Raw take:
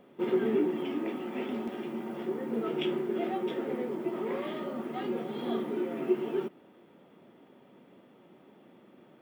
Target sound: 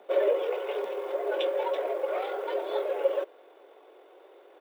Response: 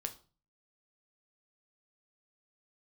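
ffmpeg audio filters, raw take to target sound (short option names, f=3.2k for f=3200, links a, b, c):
-af "atempo=2,afreqshift=180,volume=3.5dB"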